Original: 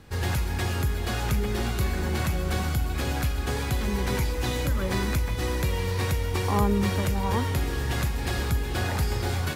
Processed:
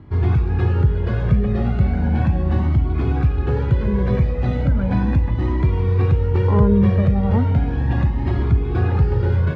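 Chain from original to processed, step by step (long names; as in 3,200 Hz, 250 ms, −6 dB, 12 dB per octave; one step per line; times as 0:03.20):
band-pass filter 140–3,300 Hz
spectral tilt −4.5 dB per octave
flanger whose copies keep moving one way rising 0.36 Hz
level +6 dB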